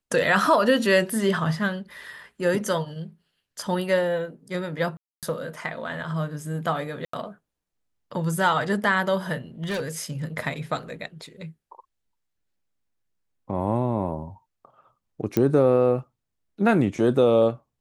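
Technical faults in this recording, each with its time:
4.97–5.23 gap 0.257 s
7.05–7.13 gap 84 ms
9.63–9.97 clipped -24 dBFS
15.37 pop -10 dBFS

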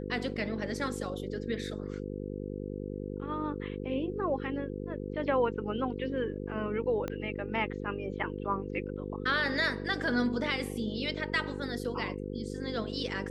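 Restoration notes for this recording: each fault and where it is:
buzz 50 Hz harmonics 10 -38 dBFS
7.08 pop -21 dBFS

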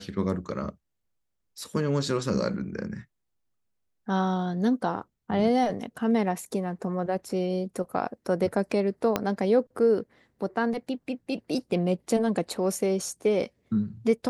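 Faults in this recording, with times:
9.16 pop -10 dBFS

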